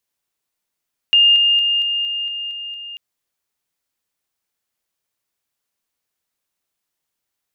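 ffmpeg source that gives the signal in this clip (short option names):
-f lavfi -i "aevalsrc='pow(10,(-8.5-3*floor(t/0.23))/20)*sin(2*PI*2820*t)':d=1.84:s=44100"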